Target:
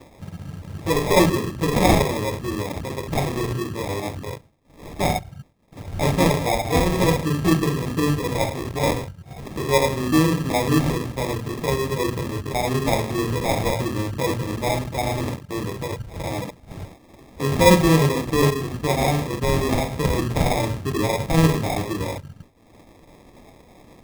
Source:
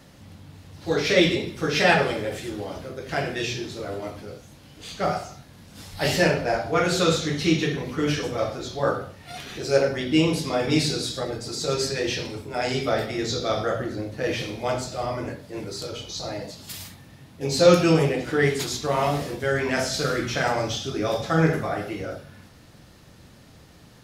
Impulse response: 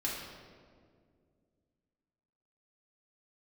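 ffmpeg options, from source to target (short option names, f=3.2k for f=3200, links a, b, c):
-filter_complex "[0:a]afwtdn=0.0398,acrossover=split=270|6500[a][b][c];[b]acompressor=mode=upward:threshold=-34dB:ratio=2.5[d];[a][d][c]amix=inputs=3:normalize=0,acrusher=samples=30:mix=1:aa=0.000001,lowshelf=f=170:g=7,asplit=2[e][f];[f]acompressor=threshold=-29dB:ratio=6,volume=1dB[g];[e][g]amix=inputs=2:normalize=0,agate=range=-33dB:threshold=-38dB:ratio=3:detection=peak,volume=-1dB"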